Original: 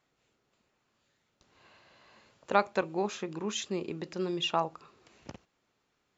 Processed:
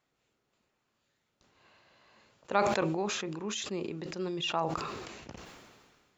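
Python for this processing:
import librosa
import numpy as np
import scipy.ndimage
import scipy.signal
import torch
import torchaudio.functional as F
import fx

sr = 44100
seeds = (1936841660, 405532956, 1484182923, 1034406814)

y = fx.sustainer(x, sr, db_per_s=33.0)
y = F.gain(torch.from_numpy(y), -3.0).numpy()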